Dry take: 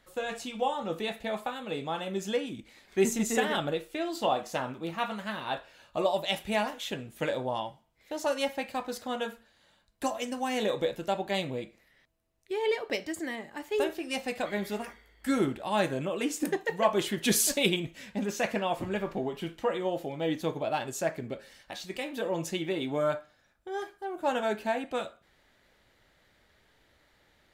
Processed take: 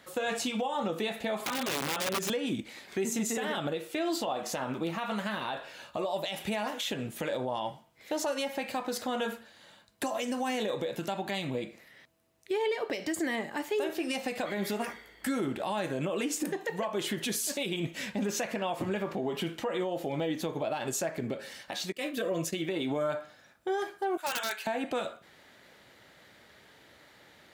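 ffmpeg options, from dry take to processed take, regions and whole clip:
-filter_complex "[0:a]asettb=1/sr,asplit=3[a][b][c];[a]atrim=end=1.394[d];[b]atrim=start=1.39:end=2.3,asetpts=PTS-STARTPTS,afade=t=in:d=0.004:c=qsin,afade=t=out:st=0.906:d=0.004:c=qsin,aecho=1:1:7.3:0.93,atrim=end_sample=40131,acompressor=threshold=-37dB:ratio=5:attack=3.2:release=140:knee=1:detection=peak,aeval=exprs='(mod(53.1*val(0)+1,2)-1)/53.1':c=same[e];[c]atrim=start=2.296[f];[d][e]acrossfade=d=0.004:c1=hsin:c2=qsin[g];[g][f]acrossfade=d=0.004:c1=qsin:c2=hsin,asettb=1/sr,asplit=3[h][i][j];[h]atrim=end=10.994[k];[i]atrim=start=10.99:end=11.55,asetpts=PTS-STARTPTS,afade=t=in:d=0.004:c=qsin,afade=t=out:st=0.556:d=0.004:c=qsin,equalizer=f=490:t=o:w=0.65:g=-8.5,acompressor=threshold=-39dB:ratio=2.5:attack=3.2:release=140:knee=1:detection=peak[l];[j]atrim=start=11.546[m];[k][l]acrossfade=d=0.004:c1=hsin:c2=qsin[n];[n][m]acrossfade=d=0.004:c1=qsin:c2=hsin,asettb=1/sr,asplit=3[o][p][q];[o]atrim=end=21.924[r];[p]atrim=start=21.92:end=22.69,asetpts=PTS-STARTPTS,afade=t=in:d=0.004:c=qsin,afade=t=out:st=0.766:d=0.004:c=qsin,agate=range=-33dB:threshold=-35dB:ratio=3:release=100:detection=peak,asuperstop=centerf=860:order=20:qfactor=5,highshelf=f=8.5k:g=4.5[s];[q]atrim=start=22.686[t];[r][s]acrossfade=d=0.004:c1=hsin:c2=qsin[u];[u][t]acrossfade=d=0.004:c1=qsin:c2=hsin,asettb=1/sr,asplit=3[v][w][x];[v]atrim=end=24.174[y];[w]atrim=start=24.17:end=24.67,asetpts=PTS-STARTPTS,afade=t=in:d=0.004:c=qsin,afade=t=out:st=0.496:d=0.004:c=qsin,highpass=1.5k,aeval=exprs='(mod(28.2*val(0)+1,2)-1)/28.2':c=same[z];[x]atrim=start=24.666[aa];[y][z]acrossfade=d=0.004:c1=hsin:c2=qsin[ab];[ab][aa]acrossfade=d=0.004:c1=qsin:c2=hsin,highpass=120,acompressor=threshold=-31dB:ratio=6,alimiter=level_in=8dB:limit=-24dB:level=0:latency=1:release=123,volume=-8dB,volume=9dB"

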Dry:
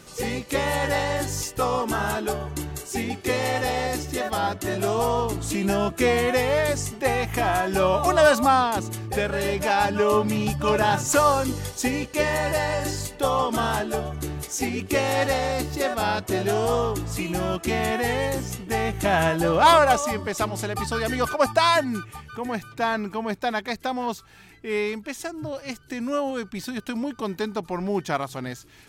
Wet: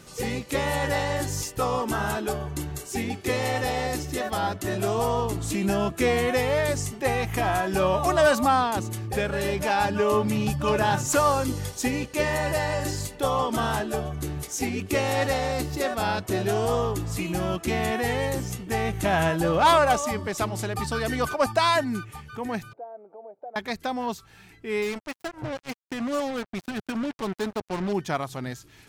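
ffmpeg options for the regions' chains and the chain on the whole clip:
-filter_complex "[0:a]asettb=1/sr,asplit=3[a][b][c];[a]atrim=end=22.734[d];[b]atrim=start=22.73:end=23.56,asetpts=PTS-STARTPTS,afade=t=in:d=0.004:c=qsin,afade=t=out:st=0.826:d=0.004:c=qsin,acompressor=threshold=-31dB:ratio=6:attack=3.2:release=140:knee=1:detection=peak,asuperpass=centerf=550:order=4:qfactor=1.8,aecho=1:1:1.4:0.32,atrim=end_sample=36603[e];[c]atrim=start=23.556[f];[d][e]acrossfade=d=0.004:c1=hsin:c2=qsin[g];[g][f]acrossfade=d=0.004:c1=qsin:c2=hsin,asettb=1/sr,asplit=3[h][i][j];[h]atrim=end=24.824[k];[i]atrim=start=24.82:end=27.93,asetpts=PTS-STARTPTS,afade=t=in:d=0.004:c=qsin,afade=t=out:st=3.106:d=0.004:c=qsin,lowpass=f=3.9k:p=1,acrusher=bits=4:mix=0:aa=0.5[l];[j]atrim=start=27.926[m];[k][l]acrossfade=d=0.004:c1=hsin:c2=qsin[n];[n][m]acrossfade=d=0.004:c1=qsin:c2=hsin,equalizer=f=120:t=o:w=1.5:g=3,acontrast=39,volume=-7.5dB"

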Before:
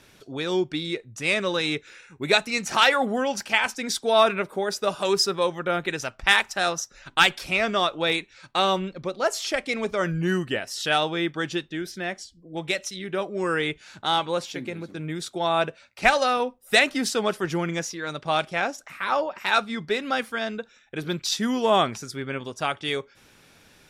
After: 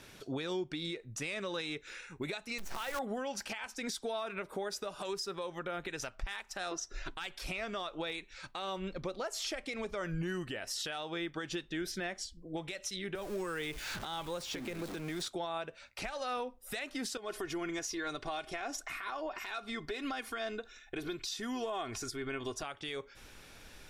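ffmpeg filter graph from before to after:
-filter_complex "[0:a]asettb=1/sr,asplit=3[a][b][c];[a]atrim=end=2.584[d];[b]atrim=start=2.58:end=2.99,asetpts=PTS-STARTPTS,afade=t=in:d=0.004:c=qsin,afade=t=out:st=0.406:d=0.004:c=qsin,highshelf=f=2.1k:g=-7,acrusher=bits=5:dc=4:mix=0:aa=0.000001[e];[c]atrim=start=2.986[f];[d][e]acrossfade=d=0.004:c1=hsin:c2=qsin[g];[g][f]acrossfade=d=0.004:c1=qsin:c2=hsin,asettb=1/sr,asplit=3[h][i][j];[h]atrim=end=6.714[k];[i]atrim=start=6.71:end=7.11,asetpts=PTS-STARTPTS,afade=t=in:d=0.004:c=qsin,afade=t=out:st=0.396:d=0.004:c=qsin,lowpass=7.1k,equalizer=f=370:t=o:w=0.75:g=9,aecho=1:1:2.9:0.47,atrim=end_sample=17640[l];[j]atrim=start=7.106[m];[k][l]acrossfade=d=0.004:c1=hsin:c2=qsin[n];[n][m]acrossfade=d=0.004:c1=qsin:c2=hsin,asettb=1/sr,asplit=3[o][p][q];[o]atrim=end=13.154[r];[p]atrim=start=13.15:end=15.27,asetpts=PTS-STARTPTS,afade=t=in:d=0.004:c=qsin,afade=t=out:st=2.116:d=0.004:c=qsin,aeval=exprs='val(0)+0.5*0.0158*sgn(val(0))':c=same,acrossover=split=200|6100[s][t][u];[s]acompressor=threshold=-45dB:ratio=4[v];[t]acompressor=threshold=-33dB:ratio=4[w];[u]acompressor=threshold=-49dB:ratio=4[x];[v][w][x]amix=inputs=3:normalize=0[y];[q]atrim=start=15.266[z];[r][y]acrossfade=d=0.004:c1=hsin:c2=qsin[aa];[aa][z]acrossfade=d=0.004:c1=qsin:c2=hsin,asettb=1/sr,asplit=3[ab][ac][ad];[ab]atrim=end=17.174[ae];[ac]atrim=start=17.17:end=22.63,asetpts=PTS-STARTPTS,afade=t=in:d=0.004:c=qsin,afade=t=out:st=5.456:d=0.004:c=qsin,acompressor=threshold=-34dB:ratio=4:attack=3.2:release=140:knee=1:detection=peak,aecho=1:1:2.8:0.61,atrim=end_sample=240786[af];[ad]atrim=start=22.626[ag];[ae][af]acrossfade=d=0.004:c1=hsin:c2=qsin[ah];[ah][ag]acrossfade=d=0.004:c1=qsin:c2=hsin,asubboost=boost=5.5:cutoff=55,acompressor=threshold=-29dB:ratio=16,alimiter=level_in=4.5dB:limit=-24dB:level=0:latency=1:release=167,volume=-4.5dB"

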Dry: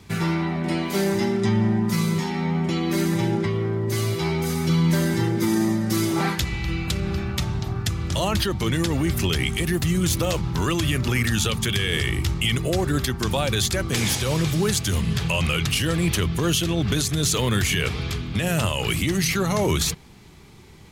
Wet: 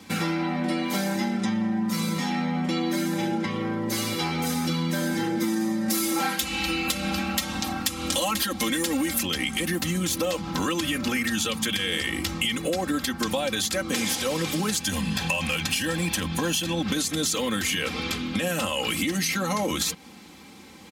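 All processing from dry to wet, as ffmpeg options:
-filter_complex "[0:a]asettb=1/sr,asplit=3[a][b][c];[a]atrim=end=5.884[d];[b]atrim=start=5.88:end=9.23,asetpts=PTS-STARTPTS,afade=t=in:d=0.004:c=qsin,afade=t=out:st=3.346:d=0.004:c=qsin,highshelf=f=2.8k:g=10.5,aecho=1:1:3.7:0.57,atrim=end_sample=147735,asoftclip=type=hard:threshold=-14.5dB[e];[c]atrim=start=9.226[f];[d][e]acrossfade=d=0.004:c1=hsin:c2=qsin[g];[g][f]acrossfade=d=0.004:c1=qsin:c2=hsin,asettb=1/sr,asplit=3[h][i][j];[h]atrim=end=14.804[k];[i]atrim=start=14.8:end=16.82,asetpts=PTS-STARTPTS,afade=t=in:d=0.004:c=qsin,afade=t=out:st=2.016:d=0.004:c=qsin,aeval=exprs='0.2*(abs(mod(val(0)/0.2+3,4)-2)-1)':c=same,aecho=1:1:1.2:0.42,atrim=end_sample=89082[l];[j]atrim=start=16.816[m];[k][l]acrossfade=d=0.004:c1=hsin:c2=qsin[n];[n][m]acrossfade=d=0.004:c1=qsin:c2=hsin,highpass=160,aecho=1:1:3.8:0.87,acompressor=threshold=-25dB:ratio=6,volume=2dB"

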